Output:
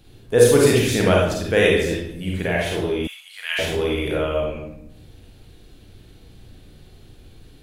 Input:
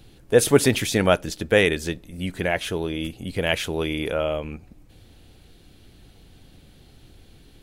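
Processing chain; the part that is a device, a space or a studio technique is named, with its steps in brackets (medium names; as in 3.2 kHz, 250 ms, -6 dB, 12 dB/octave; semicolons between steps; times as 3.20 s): bathroom (reverberation RT60 0.75 s, pre-delay 35 ms, DRR -3.5 dB); 3.07–3.59 s: inverse Chebyshev high-pass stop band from 220 Hz, stop band 80 dB; trim -3 dB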